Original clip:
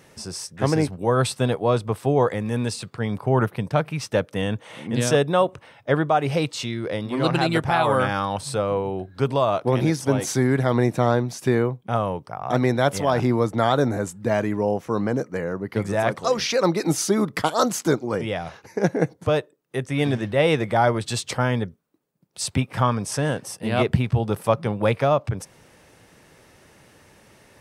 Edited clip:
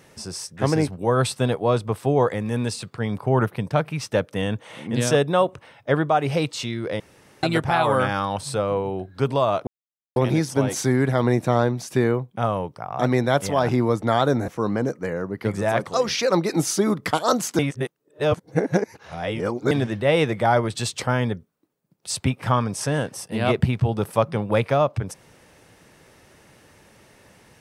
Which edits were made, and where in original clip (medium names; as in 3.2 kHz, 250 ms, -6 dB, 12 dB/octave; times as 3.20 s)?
7.00–7.43 s: room tone
9.67 s: insert silence 0.49 s
13.99–14.79 s: delete
17.90–20.02 s: reverse